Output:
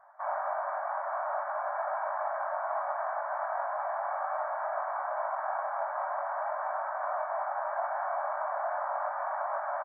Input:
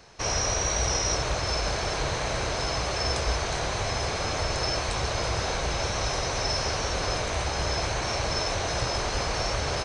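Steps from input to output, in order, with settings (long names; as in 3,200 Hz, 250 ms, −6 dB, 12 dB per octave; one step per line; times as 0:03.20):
linear-phase brick-wall band-pass 560–2,300 Hz
phaser with its sweep stopped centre 880 Hz, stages 4
double-tracking delay 21 ms −2.5 dB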